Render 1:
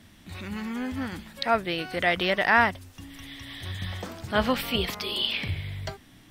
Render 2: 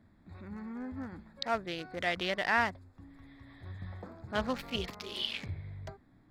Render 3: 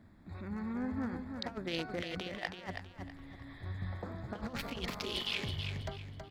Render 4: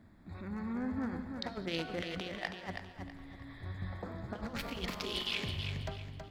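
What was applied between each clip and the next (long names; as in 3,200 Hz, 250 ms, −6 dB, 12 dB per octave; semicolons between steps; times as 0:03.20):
adaptive Wiener filter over 15 samples; dynamic equaliser 5,700 Hz, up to +5 dB, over −43 dBFS, Q 0.71; level −8.5 dB
compressor whose output falls as the input rises −38 dBFS, ratio −0.5; repeating echo 324 ms, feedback 30%, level −6.5 dB
reverb whose tail is shaped and stops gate 240 ms flat, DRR 11.5 dB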